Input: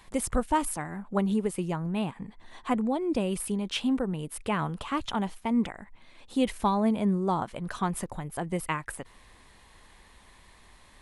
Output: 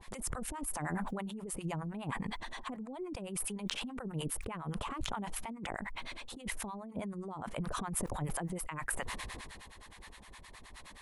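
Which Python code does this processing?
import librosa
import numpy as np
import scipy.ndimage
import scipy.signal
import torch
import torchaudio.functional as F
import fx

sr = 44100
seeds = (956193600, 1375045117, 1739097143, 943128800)

y = fx.dynamic_eq(x, sr, hz=4100.0, q=0.95, threshold_db=-52.0, ratio=4.0, max_db=-6)
y = fx.over_compress(y, sr, threshold_db=-36.0, ratio=-1.0)
y = fx.harmonic_tremolo(y, sr, hz=9.6, depth_pct=100, crossover_hz=690.0)
y = fx.sustainer(y, sr, db_per_s=24.0)
y = y * 10.0 ** (-1.5 / 20.0)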